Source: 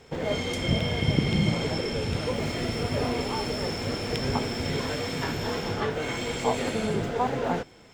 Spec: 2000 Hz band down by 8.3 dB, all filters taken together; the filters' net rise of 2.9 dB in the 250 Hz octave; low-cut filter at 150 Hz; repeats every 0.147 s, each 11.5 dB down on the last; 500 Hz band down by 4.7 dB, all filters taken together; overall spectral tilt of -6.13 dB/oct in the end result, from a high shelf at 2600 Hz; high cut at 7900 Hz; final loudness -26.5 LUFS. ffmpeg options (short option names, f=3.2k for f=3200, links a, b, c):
-af "highpass=150,lowpass=7.9k,equalizer=f=250:t=o:g=6.5,equalizer=f=500:t=o:g=-7,equalizer=f=2k:t=o:g=-6,highshelf=f=2.6k:g=-8.5,aecho=1:1:147|294|441:0.266|0.0718|0.0194,volume=3dB"